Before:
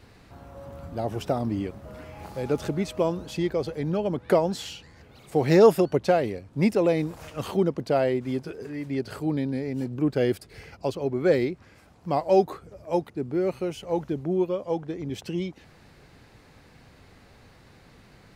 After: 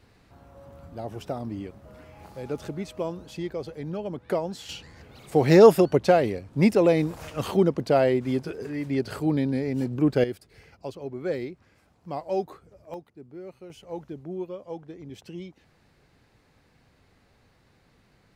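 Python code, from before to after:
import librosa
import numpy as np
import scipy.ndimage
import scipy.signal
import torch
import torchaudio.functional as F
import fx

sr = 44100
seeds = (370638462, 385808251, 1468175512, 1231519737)

y = fx.gain(x, sr, db=fx.steps((0.0, -6.0), (4.69, 2.5), (10.24, -8.0), (12.94, -15.5), (13.7, -9.0)))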